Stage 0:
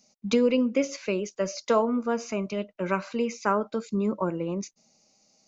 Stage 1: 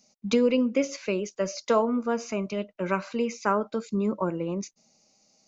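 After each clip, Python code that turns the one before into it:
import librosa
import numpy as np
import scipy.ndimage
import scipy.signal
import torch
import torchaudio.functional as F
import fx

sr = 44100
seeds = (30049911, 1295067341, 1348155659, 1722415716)

y = x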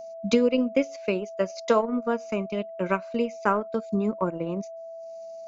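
y = fx.transient(x, sr, attack_db=3, sustain_db=-12)
y = y + 10.0 ** (-37.0 / 20.0) * np.sin(2.0 * np.pi * 660.0 * np.arange(len(y)) / sr)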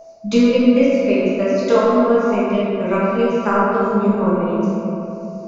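y = fx.room_shoebox(x, sr, seeds[0], volume_m3=140.0, walls='hard', distance_m=1.3)
y = F.gain(torch.from_numpy(y), -1.5).numpy()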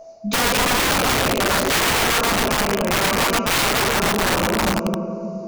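y = (np.mod(10.0 ** (13.5 / 20.0) * x + 1.0, 2.0) - 1.0) / 10.0 ** (13.5 / 20.0)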